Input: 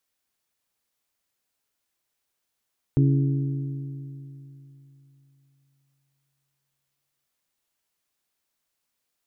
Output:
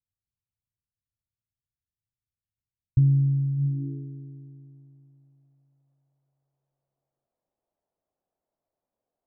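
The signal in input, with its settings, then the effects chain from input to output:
struck metal bell, length 4.29 s, lowest mode 138 Hz, modes 4, decay 3.34 s, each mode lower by 6 dB, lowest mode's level −15.5 dB
low-pass filter sweep 110 Hz → 660 Hz, 0:03.56–0:04.09

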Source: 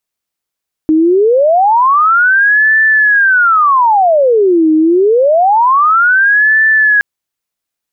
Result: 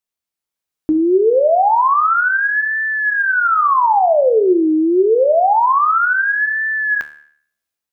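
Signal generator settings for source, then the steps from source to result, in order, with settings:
siren wail 312–1,760 Hz 0.26 per second sine −5.5 dBFS 6.12 s
automatic gain control gain up to 5.5 dB
tuned comb filter 74 Hz, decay 0.56 s, harmonics all, mix 70%
dynamic equaliser 1,800 Hz, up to −5 dB, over −25 dBFS, Q 2.3

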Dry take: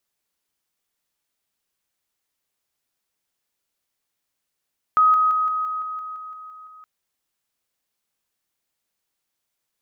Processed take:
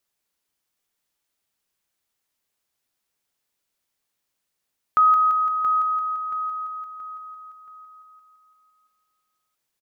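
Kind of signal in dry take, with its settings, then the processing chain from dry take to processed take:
level staircase 1,260 Hz −12 dBFS, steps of −3 dB, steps 11, 0.17 s 0.00 s
repeating echo 677 ms, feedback 37%, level −10 dB

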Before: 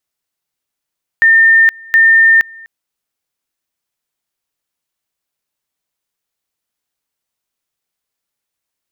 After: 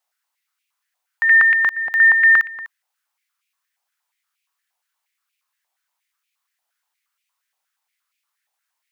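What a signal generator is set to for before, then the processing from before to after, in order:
tone at two levels in turn 1,810 Hz −4.5 dBFS, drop 27 dB, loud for 0.47 s, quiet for 0.25 s, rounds 2
brickwall limiter −15.5 dBFS
high-pass on a step sequencer 8.5 Hz 780–2,400 Hz

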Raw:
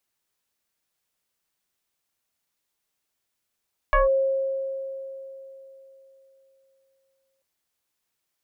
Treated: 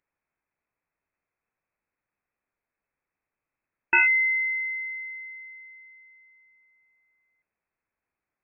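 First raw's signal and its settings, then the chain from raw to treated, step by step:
two-operator FM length 3.49 s, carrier 538 Hz, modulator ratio 1.06, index 2.3, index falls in 0.15 s linear, decay 3.55 s, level −14.5 dB
voice inversion scrambler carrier 2,600 Hz

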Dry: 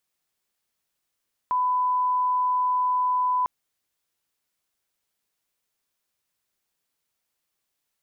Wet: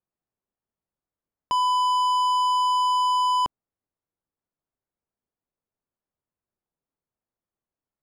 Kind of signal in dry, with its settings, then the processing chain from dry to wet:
line-up tone −20 dBFS 1.95 s
low-pass filter 1,100 Hz 12 dB per octave
low-shelf EQ 450 Hz +6.5 dB
leveller curve on the samples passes 3

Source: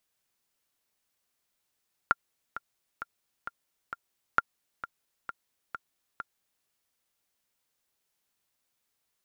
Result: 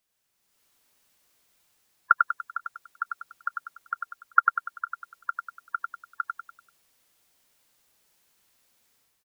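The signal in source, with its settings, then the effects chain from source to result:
click track 132 BPM, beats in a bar 5, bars 2, 1,390 Hz, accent 14.5 dB −8 dBFS
gate on every frequency bin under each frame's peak −15 dB strong
automatic gain control gain up to 10.5 dB
on a send: repeating echo 97 ms, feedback 42%, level −4 dB

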